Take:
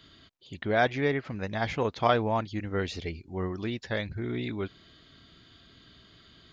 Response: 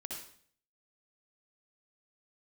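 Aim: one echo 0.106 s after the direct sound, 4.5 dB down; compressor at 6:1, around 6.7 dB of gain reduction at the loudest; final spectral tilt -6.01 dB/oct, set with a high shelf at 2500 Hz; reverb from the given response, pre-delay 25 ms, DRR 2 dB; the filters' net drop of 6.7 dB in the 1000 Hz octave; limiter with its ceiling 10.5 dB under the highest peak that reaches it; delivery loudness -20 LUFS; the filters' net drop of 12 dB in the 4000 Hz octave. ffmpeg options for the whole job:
-filter_complex "[0:a]equalizer=f=1k:t=o:g=-8.5,highshelf=f=2.5k:g=-9,equalizer=f=4k:t=o:g=-7,acompressor=threshold=-30dB:ratio=6,alimiter=level_in=7.5dB:limit=-24dB:level=0:latency=1,volume=-7.5dB,aecho=1:1:106:0.596,asplit=2[a][b];[1:a]atrim=start_sample=2205,adelay=25[c];[b][c]afir=irnorm=-1:irlink=0,volume=-1dB[d];[a][d]amix=inputs=2:normalize=0,volume=18dB"

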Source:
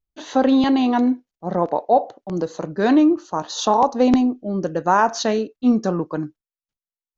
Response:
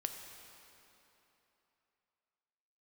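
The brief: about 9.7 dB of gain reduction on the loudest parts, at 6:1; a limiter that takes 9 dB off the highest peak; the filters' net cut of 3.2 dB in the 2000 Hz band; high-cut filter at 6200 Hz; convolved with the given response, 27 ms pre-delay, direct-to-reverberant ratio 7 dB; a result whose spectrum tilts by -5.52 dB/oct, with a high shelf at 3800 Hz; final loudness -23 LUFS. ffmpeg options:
-filter_complex "[0:a]lowpass=6.2k,equalizer=f=2k:t=o:g=-3.5,highshelf=f=3.8k:g=-5,acompressor=threshold=-22dB:ratio=6,alimiter=limit=-18.5dB:level=0:latency=1,asplit=2[a][b];[1:a]atrim=start_sample=2205,adelay=27[c];[b][c]afir=irnorm=-1:irlink=0,volume=-7dB[d];[a][d]amix=inputs=2:normalize=0,volume=5dB"

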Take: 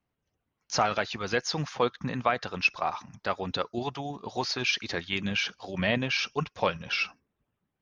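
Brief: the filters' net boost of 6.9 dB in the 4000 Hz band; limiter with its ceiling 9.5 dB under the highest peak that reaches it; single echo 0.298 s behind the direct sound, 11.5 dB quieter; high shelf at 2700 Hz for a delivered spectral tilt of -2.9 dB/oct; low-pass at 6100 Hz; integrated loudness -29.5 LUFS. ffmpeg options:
-af "lowpass=6.1k,highshelf=f=2.7k:g=7,equalizer=f=4k:t=o:g=4,alimiter=limit=-16dB:level=0:latency=1,aecho=1:1:298:0.266,volume=-0.5dB"

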